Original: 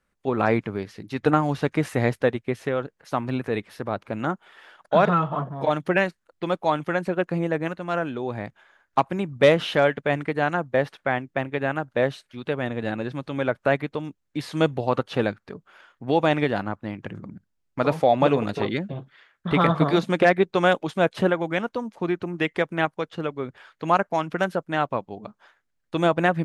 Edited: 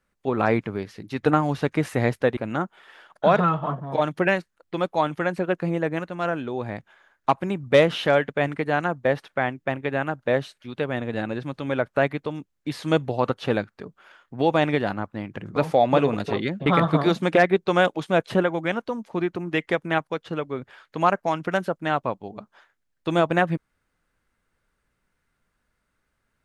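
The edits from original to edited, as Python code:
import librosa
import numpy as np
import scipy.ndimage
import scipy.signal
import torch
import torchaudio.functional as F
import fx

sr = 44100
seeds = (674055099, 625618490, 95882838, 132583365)

y = fx.edit(x, sr, fx.cut(start_s=2.37, length_s=1.69),
    fx.cut(start_s=17.25, length_s=0.6),
    fx.cut(start_s=18.95, length_s=0.58), tone=tone)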